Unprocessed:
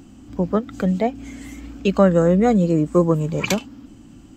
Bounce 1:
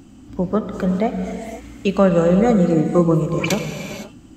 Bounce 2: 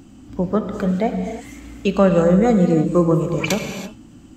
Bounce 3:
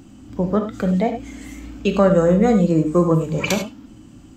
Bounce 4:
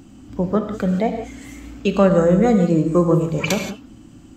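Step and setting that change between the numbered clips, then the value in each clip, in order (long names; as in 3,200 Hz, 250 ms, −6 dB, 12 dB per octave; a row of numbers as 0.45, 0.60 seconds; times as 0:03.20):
reverb whose tail is shaped and stops, gate: 540, 360, 120, 200 milliseconds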